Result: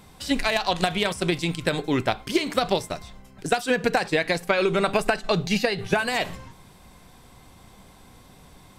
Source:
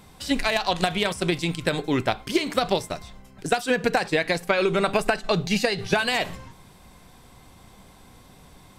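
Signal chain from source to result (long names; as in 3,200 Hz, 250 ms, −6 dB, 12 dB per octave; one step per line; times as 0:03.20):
0:05.56–0:06.15: parametric band 9,000 Hz → 2,900 Hz −8.5 dB 0.77 octaves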